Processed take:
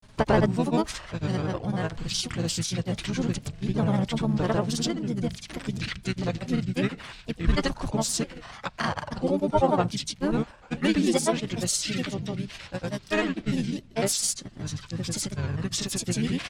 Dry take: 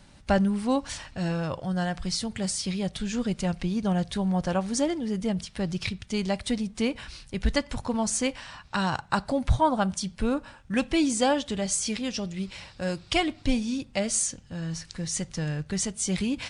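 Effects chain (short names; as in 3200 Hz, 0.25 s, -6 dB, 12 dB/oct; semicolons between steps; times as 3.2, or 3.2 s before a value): harmoniser -7 st -3 dB, +7 st -16 dB; grains, pitch spread up and down by 3 st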